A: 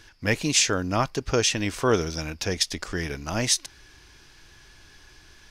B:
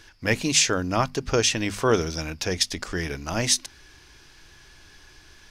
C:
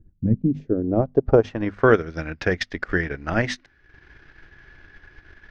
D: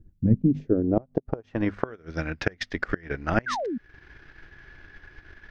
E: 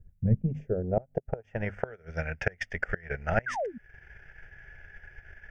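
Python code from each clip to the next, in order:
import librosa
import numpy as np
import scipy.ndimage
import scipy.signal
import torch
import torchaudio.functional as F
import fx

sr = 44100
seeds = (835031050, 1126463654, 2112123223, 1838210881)

y1 = fx.hum_notches(x, sr, base_hz=50, count=5)
y1 = F.gain(torch.from_numpy(y1), 1.0).numpy()
y2 = fx.graphic_eq_15(y1, sr, hz=(1000, 2500, 10000), db=(-8, -4, -5))
y2 = fx.transient(y2, sr, attack_db=6, sustain_db=-11)
y2 = fx.filter_sweep_lowpass(y2, sr, from_hz=190.0, to_hz=1800.0, start_s=0.34, end_s=1.88, q=2.0)
y2 = F.gain(torch.from_numpy(y2), 2.5).numpy()
y3 = fx.gate_flip(y2, sr, shuts_db=-9.0, range_db=-27)
y3 = fx.spec_paint(y3, sr, seeds[0], shape='fall', start_s=3.46, length_s=0.32, low_hz=210.0, high_hz=1700.0, level_db=-29.0)
y4 = fx.fixed_phaser(y3, sr, hz=1100.0, stages=6)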